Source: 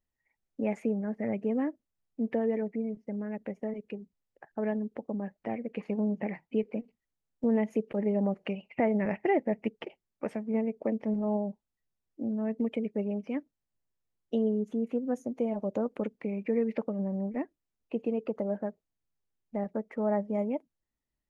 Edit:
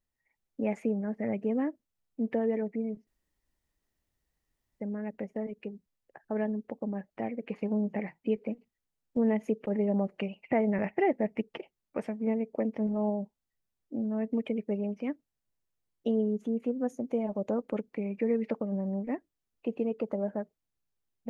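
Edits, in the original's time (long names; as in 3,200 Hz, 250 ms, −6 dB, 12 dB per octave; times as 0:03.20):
0:03.07: splice in room tone 1.73 s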